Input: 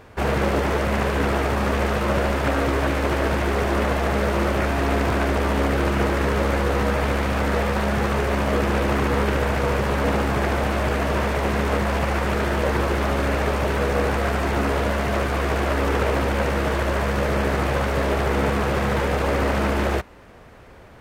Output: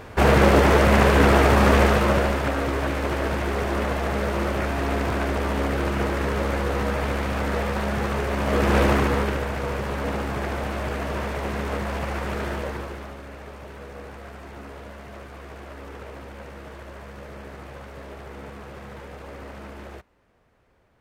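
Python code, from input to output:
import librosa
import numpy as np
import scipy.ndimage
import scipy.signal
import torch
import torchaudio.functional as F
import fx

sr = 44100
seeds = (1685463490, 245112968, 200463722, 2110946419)

y = fx.gain(x, sr, db=fx.line((1.78, 5.5), (2.53, -3.5), (8.36, -3.5), (8.81, 3.5), (9.47, -6.0), (12.51, -6.0), (13.22, -18.0)))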